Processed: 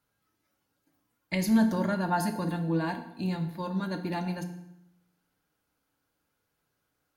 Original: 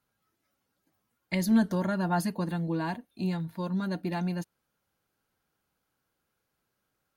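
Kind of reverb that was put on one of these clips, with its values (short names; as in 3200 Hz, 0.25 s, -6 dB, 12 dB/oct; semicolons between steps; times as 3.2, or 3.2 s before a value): FDN reverb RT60 0.83 s, low-frequency decay 1.2×, high-frequency decay 0.85×, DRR 5.5 dB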